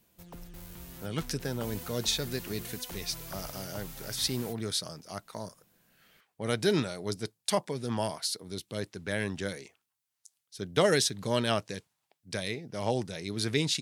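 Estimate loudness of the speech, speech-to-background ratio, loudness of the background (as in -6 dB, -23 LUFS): -32.5 LUFS, 11.0 dB, -43.5 LUFS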